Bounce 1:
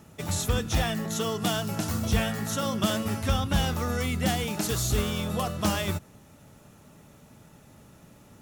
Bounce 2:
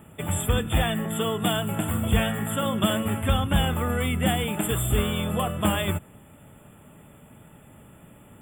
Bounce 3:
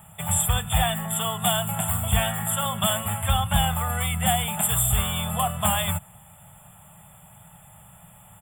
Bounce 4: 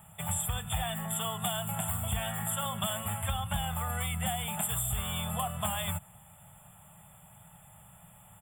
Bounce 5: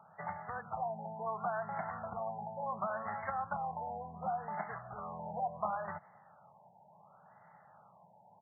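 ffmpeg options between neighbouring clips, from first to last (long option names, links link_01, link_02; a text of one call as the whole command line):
ffmpeg -i in.wav -af "afftfilt=real='re*(1-between(b*sr/4096,3600,7200))':imag='im*(1-between(b*sr/4096,3600,7200))':win_size=4096:overlap=0.75,volume=3dB" out.wav
ffmpeg -i in.wav -af "firequalizer=gain_entry='entry(180,0);entry(270,-27);entry(730,6);entry(1400,0);entry(2600,0);entry(4700,9)':delay=0.05:min_phase=1" out.wav
ffmpeg -i in.wav -af "acompressor=threshold=-23dB:ratio=6,volume=-5.5dB" out.wav
ffmpeg -i in.wav -af "highpass=340,lowpass=6100,afftfilt=real='re*lt(b*sr/1024,960*pow(2200/960,0.5+0.5*sin(2*PI*0.7*pts/sr)))':imag='im*lt(b*sr/1024,960*pow(2200/960,0.5+0.5*sin(2*PI*0.7*pts/sr)))':win_size=1024:overlap=0.75,volume=1dB" out.wav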